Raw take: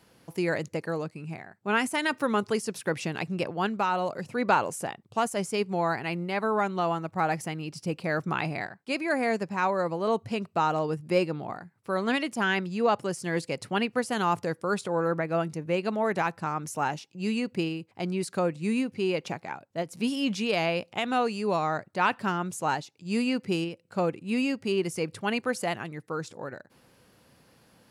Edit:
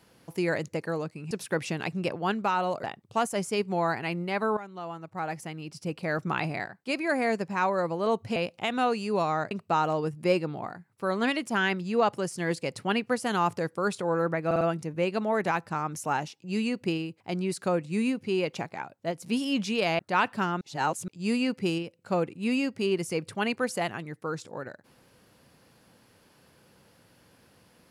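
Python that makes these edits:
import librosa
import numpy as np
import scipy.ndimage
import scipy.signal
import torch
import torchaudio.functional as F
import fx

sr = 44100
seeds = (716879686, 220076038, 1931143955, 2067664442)

y = fx.edit(x, sr, fx.cut(start_s=1.31, length_s=1.35),
    fx.cut(start_s=4.19, length_s=0.66),
    fx.fade_in_from(start_s=6.58, length_s=1.8, floor_db=-15.5),
    fx.stutter(start_s=15.32, slice_s=0.05, count=4),
    fx.move(start_s=20.7, length_s=1.15, to_s=10.37),
    fx.reverse_span(start_s=22.47, length_s=0.47), tone=tone)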